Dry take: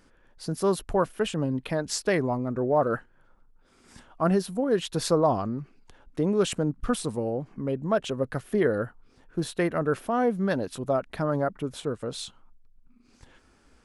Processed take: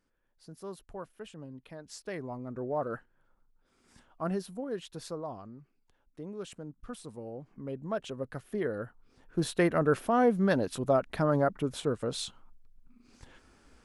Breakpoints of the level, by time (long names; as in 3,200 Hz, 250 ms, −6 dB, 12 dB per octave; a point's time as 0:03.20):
0:01.78 −18 dB
0:02.57 −9.5 dB
0:04.48 −9.5 dB
0:05.25 −17 dB
0:06.80 −17 dB
0:07.76 −9 dB
0:08.78 −9 dB
0:09.47 0 dB